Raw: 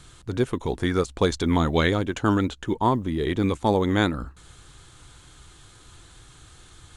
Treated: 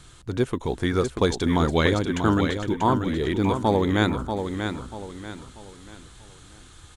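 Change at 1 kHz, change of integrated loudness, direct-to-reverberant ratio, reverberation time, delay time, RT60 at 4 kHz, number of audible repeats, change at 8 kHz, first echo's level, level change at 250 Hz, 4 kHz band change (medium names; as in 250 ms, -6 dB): +1.0 dB, +0.5 dB, no reverb, no reverb, 638 ms, no reverb, 4, +1.0 dB, -7.0 dB, +1.0 dB, +1.0 dB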